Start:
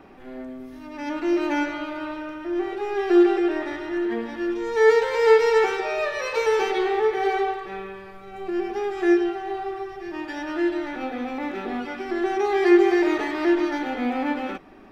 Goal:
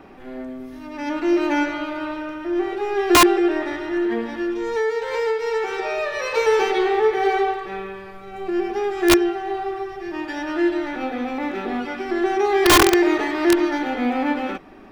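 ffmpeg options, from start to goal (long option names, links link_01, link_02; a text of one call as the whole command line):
ffmpeg -i in.wav -filter_complex "[0:a]asettb=1/sr,asplit=3[link_01][link_02][link_03];[link_01]atrim=end=4.314[link_04];[link_02]atrim=start=4.31:end=6.31,asetpts=PTS-STARTPTS,afade=type=in:duration=0.004:curve=qsin,afade=type=out:start_time=1.996:duration=0.004:curve=qsin,acompressor=threshold=-24dB:ratio=6[link_05];[link_03]atrim=start=6.306[link_06];[link_04][link_05]acrossfade=duration=0.004:curve1=hsin:curve2=qsin[link_07];[link_07][link_06]acrossfade=duration=0.004:curve1=qsin:curve2=hsin,aeval=exprs='(mod(3.55*val(0)+1,2)-1)/3.55':channel_layout=same,volume=3.5dB" out.wav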